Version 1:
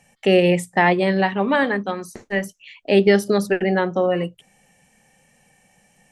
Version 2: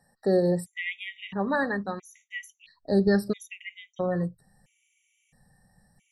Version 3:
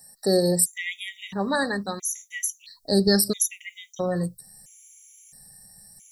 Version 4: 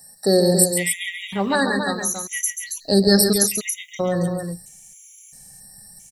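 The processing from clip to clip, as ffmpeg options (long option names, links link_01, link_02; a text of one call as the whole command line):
ffmpeg -i in.wav -af "asubboost=boost=5.5:cutoff=150,afftfilt=real='re*gt(sin(2*PI*0.75*pts/sr)*(1-2*mod(floor(b*sr/1024/1900),2)),0)':imag='im*gt(sin(2*PI*0.75*pts/sr)*(1-2*mod(floor(b*sr/1024/1900),2)),0)':win_size=1024:overlap=0.75,volume=-6.5dB" out.wav
ffmpeg -i in.wav -af "aexciter=amount=8.9:drive=6.3:freq=4100,volume=1.5dB" out.wav
ffmpeg -i in.wav -af "aecho=1:1:137|277:0.398|0.447,volume=4dB" out.wav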